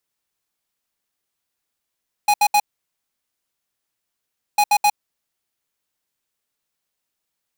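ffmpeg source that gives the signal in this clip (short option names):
-f lavfi -i "aevalsrc='0.188*(2*lt(mod(829*t,1),0.5)-1)*clip(min(mod(mod(t,2.3),0.13),0.06-mod(mod(t,2.3),0.13))/0.005,0,1)*lt(mod(t,2.3),0.39)':d=4.6:s=44100"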